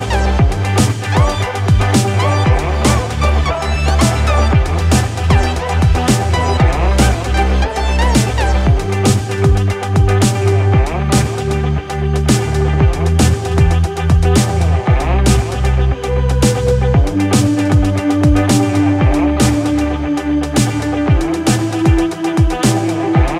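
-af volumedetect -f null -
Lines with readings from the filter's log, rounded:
mean_volume: -12.5 dB
max_volume: -2.3 dB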